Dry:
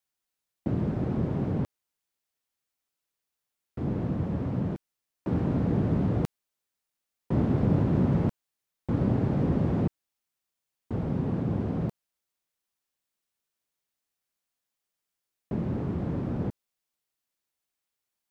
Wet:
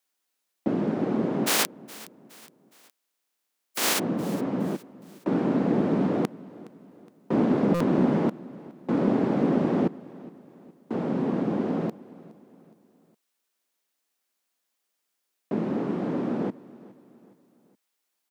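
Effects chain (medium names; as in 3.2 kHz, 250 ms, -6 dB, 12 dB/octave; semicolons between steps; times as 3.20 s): 1.46–3.98 s: spectral contrast reduction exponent 0.13; high-pass 210 Hz 24 dB/octave; feedback delay 416 ms, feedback 45%, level -20.5 dB; buffer glitch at 7.74 s, samples 256, times 10; loudspeaker Doppler distortion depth 0.26 ms; trim +6.5 dB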